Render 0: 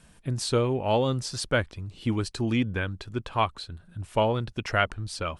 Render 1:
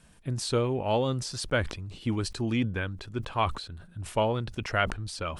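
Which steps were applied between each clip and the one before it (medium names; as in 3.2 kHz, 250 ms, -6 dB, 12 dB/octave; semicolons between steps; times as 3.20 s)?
decay stretcher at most 94 dB/s; trim -2.5 dB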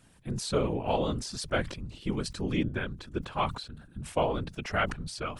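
whisper effect; trim -2 dB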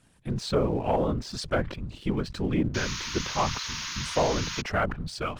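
low-pass that closes with the level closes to 1.4 kHz, closed at -24.5 dBFS; painted sound noise, 2.74–4.62 s, 890–6800 Hz -39 dBFS; waveshaping leveller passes 1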